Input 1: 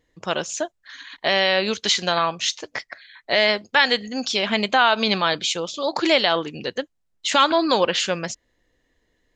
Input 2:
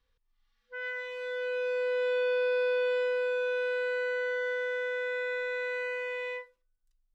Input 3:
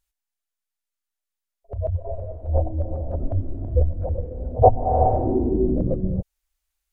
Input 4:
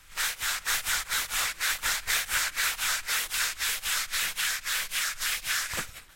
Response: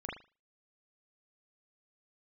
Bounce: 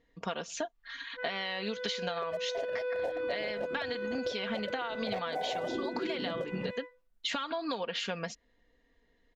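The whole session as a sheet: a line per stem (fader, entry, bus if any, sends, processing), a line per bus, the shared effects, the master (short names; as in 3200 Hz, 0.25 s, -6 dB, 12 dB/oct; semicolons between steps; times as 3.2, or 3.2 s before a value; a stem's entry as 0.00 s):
-3.5 dB, 0.00 s, no bus, no send, LPF 4200 Hz 12 dB/oct; comb 4.3 ms, depth 59%; compressor, threshold -18 dBFS, peak gain reduction 9.5 dB
+1.0 dB, 0.45 s, no bus, no send, high shelf 2400 Hz -9 dB
-5.0 dB, 0.50 s, bus A, no send, Bessel high-pass 260 Hz, order 6; sample leveller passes 3
off
bus A: 0.0 dB, reverb removal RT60 0.8 s; compressor, threshold -23 dBFS, peak gain reduction 11.5 dB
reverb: off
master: compressor 10:1, threshold -31 dBFS, peak gain reduction 14 dB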